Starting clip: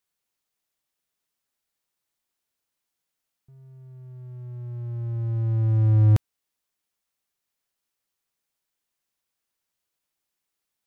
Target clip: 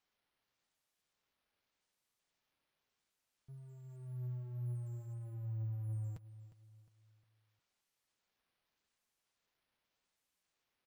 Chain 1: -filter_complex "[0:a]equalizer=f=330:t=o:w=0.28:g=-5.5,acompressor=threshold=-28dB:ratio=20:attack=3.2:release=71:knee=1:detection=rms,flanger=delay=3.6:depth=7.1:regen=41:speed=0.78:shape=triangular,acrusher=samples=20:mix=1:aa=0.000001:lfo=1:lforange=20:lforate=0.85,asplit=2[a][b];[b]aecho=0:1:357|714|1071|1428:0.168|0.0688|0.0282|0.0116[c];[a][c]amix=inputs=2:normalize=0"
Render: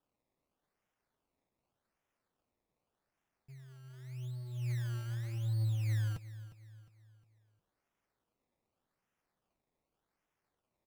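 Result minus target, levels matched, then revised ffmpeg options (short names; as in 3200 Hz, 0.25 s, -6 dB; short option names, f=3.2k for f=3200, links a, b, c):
decimation with a swept rate: distortion +15 dB; compressor: peak gain reduction -7 dB
-filter_complex "[0:a]equalizer=f=330:t=o:w=0.28:g=-5.5,acompressor=threshold=-35.5dB:ratio=20:attack=3.2:release=71:knee=1:detection=rms,flanger=delay=3.6:depth=7.1:regen=41:speed=0.78:shape=triangular,acrusher=samples=4:mix=1:aa=0.000001:lfo=1:lforange=4:lforate=0.85,asplit=2[a][b];[b]aecho=0:1:357|714|1071|1428:0.168|0.0688|0.0282|0.0116[c];[a][c]amix=inputs=2:normalize=0"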